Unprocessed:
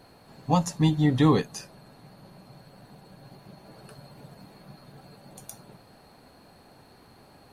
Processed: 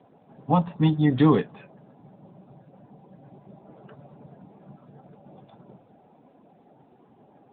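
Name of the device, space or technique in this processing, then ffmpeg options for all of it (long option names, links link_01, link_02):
mobile call with aggressive noise cancelling: -af "highpass=130,afftdn=noise_reduction=13:noise_floor=-51,volume=2.5dB" -ar 8000 -c:a libopencore_amrnb -b:a 10200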